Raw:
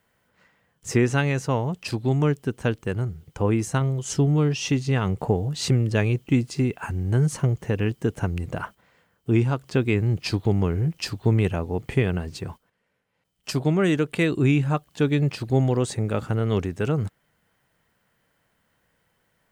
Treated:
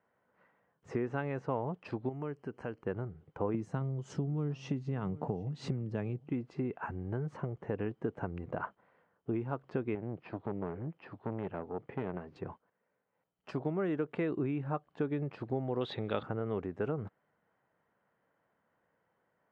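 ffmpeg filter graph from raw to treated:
ffmpeg -i in.wav -filter_complex "[0:a]asettb=1/sr,asplit=3[link_01][link_02][link_03];[link_01]atrim=end=2.094[link_04];[link_02]atrim=start=2.09:end=2.83,asetpts=PTS-STARTPTS,afade=type=in:duration=0.004:curve=qsin,afade=type=out:start_time=0.736:duration=0.004:curve=qsin,highshelf=frequency=2700:gain=8.5,acompressor=threshold=-31dB:ratio=2.5:attack=3.2:release=140:knee=1:detection=peak,asuperstop=centerf=3600:order=8:qfactor=4.1[link_05];[link_03]atrim=start=2.826[link_06];[link_04][link_05]acrossfade=duration=0.004:curve1=hsin:curve2=qsin[link_07];[link_07][link_06]acrossfade=duration=0.004:curve1=qsin:curve2=hsin,asettb=1/sr,asplit=3[link_08][link_09][link_10];[link_08]atrim=end=3.544[link_11];[link_09]atrim=start=3.54:end=6.29,asetpts=PTS-STARTPTS,afade=type=in:duration=0.004:curve=qsin,afade=type=out:start_time=2.746:duration=0.004:curve=qsin,highpass=130,bass=frequency=250:gain=13,treble=frequency=4000:gain=11,aecho=1:1:751:0.075,atrim=end_sample=121275[link_12];[link_10]atrim=start=6.286[link_13];[link_11][link_12]acrossfade=duration=0.004:curve1=hsin:curve2=qsin[link_14];[link_14][link_13]acrossfade=duration=0.004:curve1=qsin:curve2=hsin,asettb=1/sr,asplit=3[link_15][link_16][link_17];[link_15]atrim=end=9.954[link_18];[link_16]atrim=start=9.95:end=12.36,asetpts=PTS-STARTPTS,afade=type=in:duration=0.004:curve=qsin,afade=type=out:start_time=2.406:duration=0.004:curve=qsin,acrossover=split=3000[link_19][link_20];[link_20]acompressor=threshold=-51dB:ratio=4:attack=1:release=60[link_21];[link_19][link_21]amix=inputs=2:normalize=0,aeval=exprs='(tanh(10*val(0)+0.65)-tanh(0.65))/10':channel_layout=same,highpass=110,lowpass=6200[link_22];[link_17]atrim=start=12.356[link_23];[link_18][link_22]acrossfade=duration=0.004:curve1=hsin:curve2=qsin[link_24];[link_24][link_23]acrossfade=duration=0.004:curve1=qsin:curve2=hsin,asettb=1/sr,asplit=3[link_25][link_26][link_27];[link_25]atrim=end=15.814[link_28];[link_26]atrim=start=15.81:end=16.23,asetpts=PTS-STARTPTS,afade=type=in:duration=0.004:curve=qsin,afade=type=out:start_time=0.416:duration=0.004:curve=qsin,lowpass=frequency=3600:width_type=q:width=8,highshelf=frequency=2200:gain=10.5[link_29];[link_27]atrim=start=16.226[link_30];[link_28][link_29]acrossfade=duration=0.004:curve1=hsin:curve2=qsin[link_31];[link_31][link_30]acrossfade=duration=0.004:curve1=qsin:curve2=hsin,lowpass=1200,acompressor=threshold=-23dB:ratio=6,highpass=frequency=380:poles=1,volume=-2dB" out.wav

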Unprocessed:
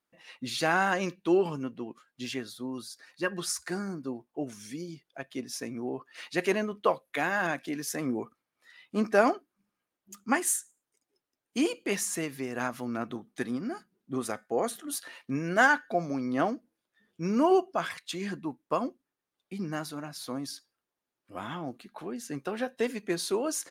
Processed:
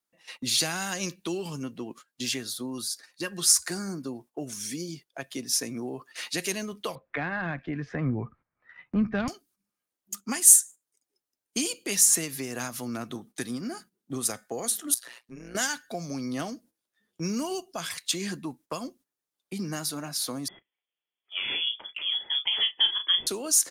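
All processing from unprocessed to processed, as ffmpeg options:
ffmpeg -i in.wav -filter_complex "[0:a]asettb=1/sr,asplit=3[link_01][link_02][link_03];[link_01]atrim=end=6.954[link_04];[link_02]atrim=start=6.95:end=9.28,asetpts=PTS-STARTPTS,afade=type=in:duration=0.004:curve=qsin,afade=type=out:start_time=2.326:duration=0.004:curve=qsin,lowpass=frequency=1900:width=0.5412,lowpass=frequency=1900:width=1.3066,asubboost=boost=10:cutoff=130,acontrast=82[link_05];[link_03]atrim=start=9.276[link_06];[link_04][link_05]acrossfade=duration=0.004:curve1=hsin:curve2=qsin[link_07];[link_07][link_06]acrossfade=duration=0.004:curve1=qsin:curve2=hsin,asettb=1/sr,asplit=3[link_08][link_09][link_10];[link_08]atrim=end=14.944[link_11];[link_09]atrim=start=14.94:end=15.55,asetpts=PTS-STARTPTS,afade=type=in:duration=0.004:curve=qsin,afade=type=out:start_time=0.606:duration=0.004:curve=qsin,acompressor=threshold=-44dB:ratio=4:attack=3.2:release=140:knee=1:detection=peak,tremolo=f=120:d=0.857[link_12];[link_10]atrim=start=15.546[link_13];[link_11][link_12]acrossfade=duration=0.004:curve1=hsin:curve2=qsin[link_14];[link_14][link_13]acrossfade=duration=0.004:curve1=qsin:curve2=hsin,asettb=1/sr,asplit=3[link_15][link_16][link_17];[link_15]atrim=end=20.484[link_18];[link_16]atrim=start=20.48:end=23.27,asetpts=PTS-STARTPTS,afade=type=in:duration=0.004:curve=qsin,afade=type=out:start_time=2.786:duration=0.004:curve=qsin,lowpass=frequency=3100:width_type=q:width=0.5098,lowpass=frequency=3100:width_type=q:width=0.6013,lowpass=frequency=3100:width_type=q:width=0.9,lowpass=frequency=3100:width_type=q:width=2.563,afreqshift=-3600,equalizer=frequency=380:width=0.87:gain=9,asplit=2[link_19][link_20];[link_20]adelay=35,volume=-8dB[link_21];[link_19][link_21]amix=inputs=2:normalize=0,atrim=end_sample=123039[link_22];[link_17]atrim=start=23.266[link_23];[link_18][link_22]acrossfade=duration=0.004:curve1=hsin:curve2=qsin[link_24];[link_24][link_23]acrossfade=duration=0.004:curve1=qsin:curve2=hsin,agate=range=-11dB:threshold=-51dB:ratio=16:detection=peak,bass=frequency=250:gain=-1,treble=frequency=4000:gain=9,acrossover=split=160|3000[link_25][link_26][link_27];[link_26]acompressor=threshold=-38dB:ratio=6[link_28];[link_25][link_28][link_27]amix=inputs=3:normalize=0,volume=5dB" out.wav

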